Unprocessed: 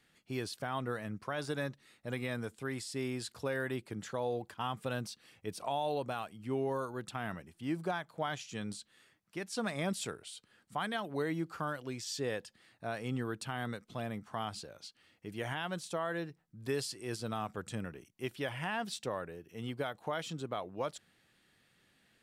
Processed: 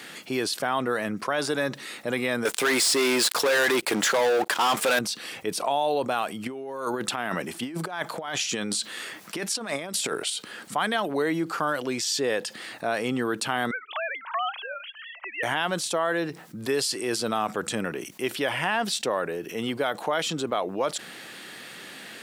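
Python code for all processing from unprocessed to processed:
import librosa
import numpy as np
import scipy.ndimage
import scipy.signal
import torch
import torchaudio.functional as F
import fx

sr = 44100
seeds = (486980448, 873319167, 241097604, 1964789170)

y = fx.chain(x, sr, fx.highpass(hz=610.0, slope=6),
    fx.leveller(passes=5), at=(2.45, 4.99))
y = fx.chain(y, sr, fx.low_shelf(hz=200.0, db=-3.0),
    fx.over_compress(threshold_db=-43.0, ratio=-0.5), at=(6.46, 10.3))
y = fx.chain(y, sr, fx.sine_speech(),
    fx.highpass(hz=820.0, slope=24), at=(13.71, 15.43))
y = scipy.signal.sosfilt(scipy.signal.butter(2, 260.0, 'highpass', fs=sr, output='sos'), y)
y = fx.env_flatten(y, sr, amount_pct=50)
y = F.gain(torch.from_numpy(y), 7.0).numpy()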